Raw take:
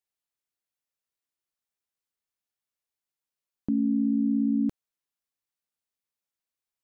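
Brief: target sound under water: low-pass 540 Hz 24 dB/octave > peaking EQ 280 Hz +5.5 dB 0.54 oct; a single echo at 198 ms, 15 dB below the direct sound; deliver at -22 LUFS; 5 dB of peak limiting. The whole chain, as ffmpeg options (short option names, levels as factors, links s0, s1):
-af "alimiter=limit=0.0708:level=0:latency=1,lowpass=f=540:w=0.5412,lowpass=f=540:w=1.3066,equalizer=f=280:t=o:w=0.54:g=5.5,aecho=1:1:198:0.178,volume=1.58"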